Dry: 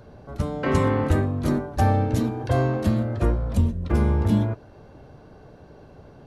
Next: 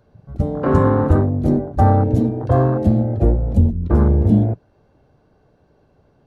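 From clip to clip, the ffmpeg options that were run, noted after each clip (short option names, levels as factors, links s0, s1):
-af "afwtdn=0.0447,volume=2.11"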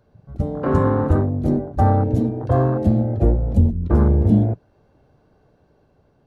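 -af "dynaudnorm=f=230:g=9:m=3.76,volume=0.708"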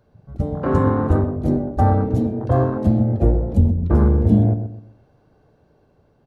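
-filter_complex "[0:a]asplit=2[s0][s1];[s1]adelay=127,lowpass=f=1000:p=1,volume=0.398,asplit=2[s2][s3];[s3]adelay=127,lowpass=f=1000:p=1,volume=0.34,asplit=2[s4][s5];[s5]adelay=127,lowpass=f=1000:p=1,volume=0.34,asplit=2[s6][s7];[s7]adelay=127,lowpass=f=1000:p=1,volume=0.34[s8];[s0][s2][s4][s6][s8]amix=inputs=5:normalize=0"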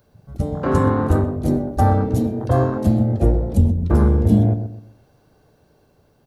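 -af "crystalizer=i=3.5:c=0"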